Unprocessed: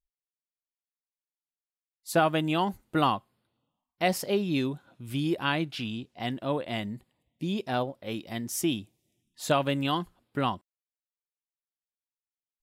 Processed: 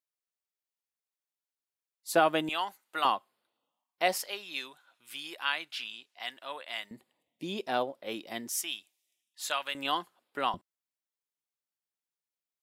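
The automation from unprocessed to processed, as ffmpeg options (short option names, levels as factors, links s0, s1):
-af "asetnsamples=n=441:p=0,asendcmd='2.49 highpass f 990;3.05 highpass f 480;4.18 highpass f 1200;6.91 highpass f 340;8.49 highpass f 1300;9.75 highpass f 530;10.54 highpass f 130',highpass=320"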